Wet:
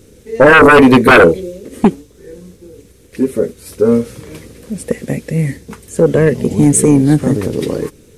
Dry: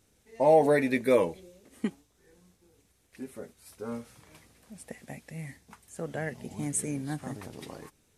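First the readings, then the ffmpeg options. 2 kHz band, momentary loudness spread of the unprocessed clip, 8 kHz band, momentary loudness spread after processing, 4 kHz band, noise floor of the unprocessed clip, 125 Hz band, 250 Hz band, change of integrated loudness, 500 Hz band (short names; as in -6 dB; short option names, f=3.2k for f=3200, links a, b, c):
+25.5 dB, 23 LU, +17.5 dB, 18 LU, +23.5 dB, -68 dBFS, +23.0 dB, +22.0 dB, +17.0 dB, +16.5 dB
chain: -af "lowshelf=f=590:t=q:w=3:g=6.5,aeval=exprs='0.75*sin(PI/2*4.47*val(0)/0.75)':c=same,volume=1dB"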